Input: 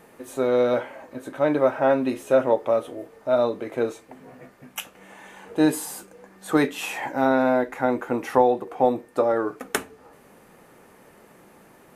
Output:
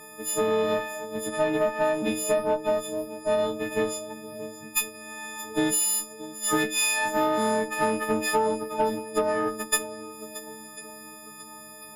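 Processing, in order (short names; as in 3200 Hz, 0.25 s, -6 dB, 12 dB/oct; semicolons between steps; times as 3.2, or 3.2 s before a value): frequency quantiser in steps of 6 st; compressor 6:1, threshold -21 dBFS, peak gain reduction 10.5 dB; swung echo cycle 1.045 s, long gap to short 1.5:1, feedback 45%, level -16.5 dB; added harmonics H 6 -25 dB, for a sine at -10 dBFS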